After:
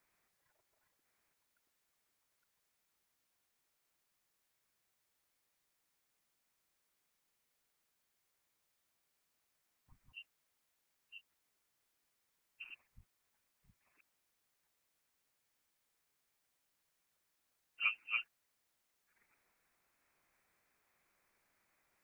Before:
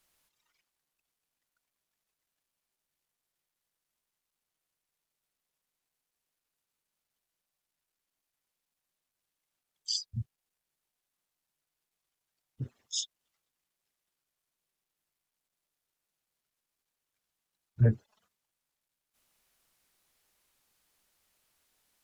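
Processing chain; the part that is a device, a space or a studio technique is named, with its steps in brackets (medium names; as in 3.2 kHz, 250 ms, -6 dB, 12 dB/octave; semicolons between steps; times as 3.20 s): chunks repeated in reverse 667 ms, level -2.5 dB; scrambled radio voice (band-pass 370–2600 Hz; frequency inversion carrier 2.9 kHz; white noise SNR 28 dB)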